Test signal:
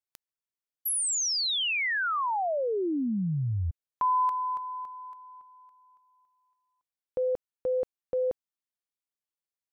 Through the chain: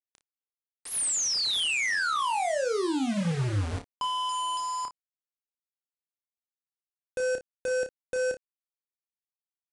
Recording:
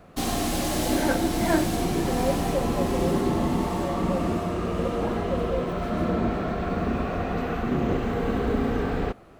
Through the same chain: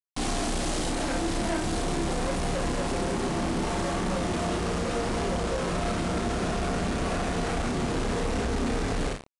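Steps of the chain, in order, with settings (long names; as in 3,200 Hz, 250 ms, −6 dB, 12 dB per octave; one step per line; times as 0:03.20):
downward compressor 2.5 to 1, threshold −28 dBFS
low-shelf EQ 93 Hz +6 dB
hum removal 45.62 Hz, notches 5
log-companded quantiser 2 bits
downsampling to 22,050 Hz
on a send: ambience of single reflections 30 ms −6 dB, 57 ms −15 dB
on the sum: level −3 dB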